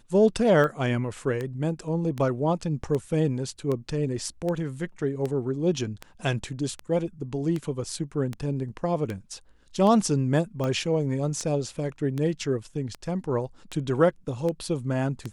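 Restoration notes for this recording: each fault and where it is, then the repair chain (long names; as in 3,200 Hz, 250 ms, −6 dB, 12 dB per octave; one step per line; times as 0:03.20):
scratch tick 78 rpm −18 dBFS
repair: click removal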